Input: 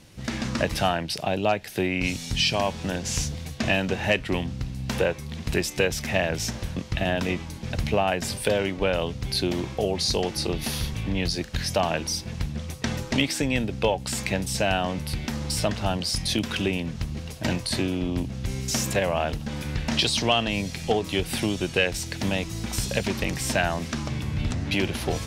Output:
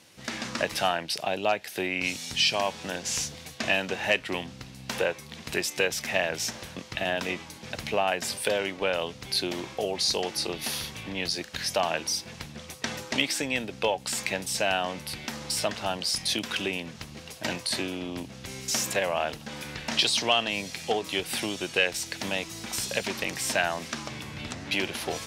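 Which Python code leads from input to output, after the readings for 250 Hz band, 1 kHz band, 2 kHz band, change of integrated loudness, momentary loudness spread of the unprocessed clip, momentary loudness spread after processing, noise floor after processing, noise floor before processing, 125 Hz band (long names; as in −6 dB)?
−8.0 dB, −1.5 dB, −0.5 dB, −2.5 dB, 7 LU, 11 LU, −46 dBFS, −37 dBFS, −13.5 dB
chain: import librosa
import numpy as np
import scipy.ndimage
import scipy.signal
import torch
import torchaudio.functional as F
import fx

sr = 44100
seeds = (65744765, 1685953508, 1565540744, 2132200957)

y = fx.highpass(x, sr, hz=570.0, slope=6)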